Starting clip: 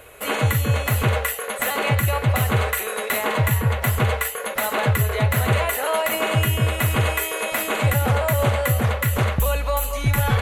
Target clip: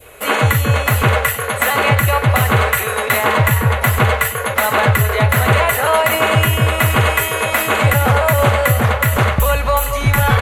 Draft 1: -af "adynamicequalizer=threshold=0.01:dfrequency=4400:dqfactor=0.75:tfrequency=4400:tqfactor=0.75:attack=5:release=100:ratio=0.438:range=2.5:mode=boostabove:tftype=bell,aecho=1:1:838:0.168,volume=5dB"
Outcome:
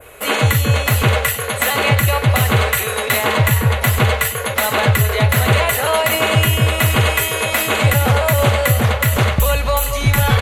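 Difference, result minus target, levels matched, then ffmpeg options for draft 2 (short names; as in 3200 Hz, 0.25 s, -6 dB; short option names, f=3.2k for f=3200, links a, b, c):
4000 Hz band +3.5 dB
-af "adynamicequalizer=threshold=0.01:dfrequency=1300:dqfactor=0.75:tfrequency=1300:tqfactor=0.75:attack=5:release=100:ratio=0.438:range=2.5:mode=boostabove:tftype=bell,aecho=1:1:838:0.168,volume=5dB"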